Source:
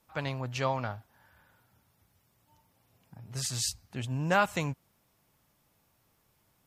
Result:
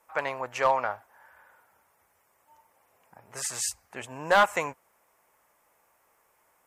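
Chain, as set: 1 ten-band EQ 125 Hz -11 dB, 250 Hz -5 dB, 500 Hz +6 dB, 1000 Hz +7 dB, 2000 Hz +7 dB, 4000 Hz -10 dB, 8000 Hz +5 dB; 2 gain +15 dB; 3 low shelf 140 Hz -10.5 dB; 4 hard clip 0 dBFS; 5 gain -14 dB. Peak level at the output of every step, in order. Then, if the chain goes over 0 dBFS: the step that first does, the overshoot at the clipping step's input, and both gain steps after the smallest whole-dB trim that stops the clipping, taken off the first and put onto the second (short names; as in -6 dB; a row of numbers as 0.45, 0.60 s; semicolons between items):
-6.5, +8.5, +8.5, 0.0, -14.0 dBFS; step 2, 8.5 dB; step 2 +6 dB, step 5 -5 dB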